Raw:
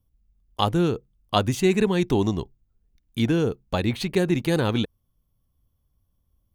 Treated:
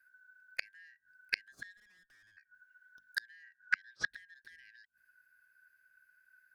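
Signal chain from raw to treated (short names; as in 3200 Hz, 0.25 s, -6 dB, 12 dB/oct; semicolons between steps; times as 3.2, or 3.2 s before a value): four-band scrambler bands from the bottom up 4123; low shelf 460 Hz +7 dB; notches 50/100/150/200/250 Hz; flipped gate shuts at -16 dBFS, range -37 dB; 1.77–2.37 tube stage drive 63 dB, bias 0.55; 3.43–4.11 speaker cabinet 140–7500 Hz, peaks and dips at 230 Hz -10 dB, 730 Hz -8 dB, 1300 Hz +10 dB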